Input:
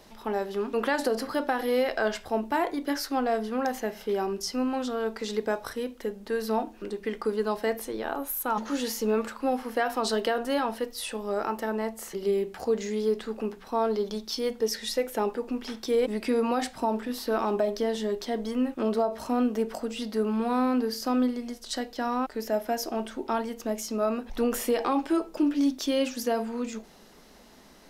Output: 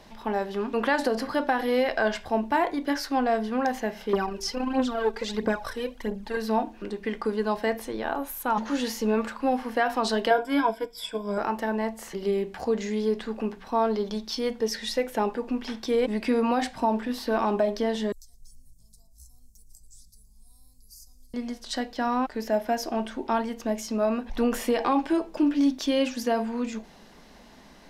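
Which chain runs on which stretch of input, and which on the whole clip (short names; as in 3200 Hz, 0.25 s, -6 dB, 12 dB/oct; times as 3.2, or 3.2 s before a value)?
4.13–6.37 phaser 1.5 Hz, delay 2.7 ms, feedback 64% + core saturation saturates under 440 Hz
10.3–11.38 ripple EQ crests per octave 1.7, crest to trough 18 dB + upward expander, over -38 dBFS
18.12–21.34 inverse Chebyshev band-stop 170–3000 Hz, stop band 50 dB + frequency-shifting echo 0.114 s, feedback 62%, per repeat +50 Hz, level -20 dB + three-band squash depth 40%
whole clip: LPF 3600 Hz 6 dB/oct; bell 410 Hz -5 dB 0.99 oct; notch 1300 Hz, Q 11; gain +4.5 dB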